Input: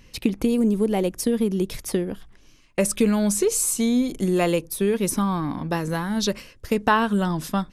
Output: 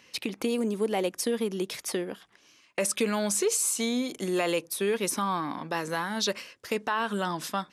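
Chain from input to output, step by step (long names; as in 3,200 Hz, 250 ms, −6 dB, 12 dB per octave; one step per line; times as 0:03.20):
meter weighting curve A
brickwall limiter −17 dBFS, peak gain reduction 10.5 dB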